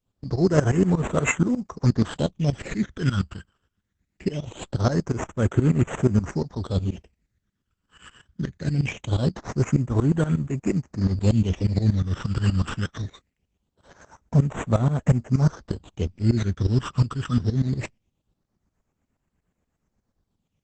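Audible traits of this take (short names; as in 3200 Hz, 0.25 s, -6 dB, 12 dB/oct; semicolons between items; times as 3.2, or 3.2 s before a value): aliases and images of a low sample rate 4700 Hz, jitter 0%; phasing stages 12, 0.22 Hz, lowest notch 670–4700 Hz; tremolo saw up 8.4 Hz, depth 90%; Opus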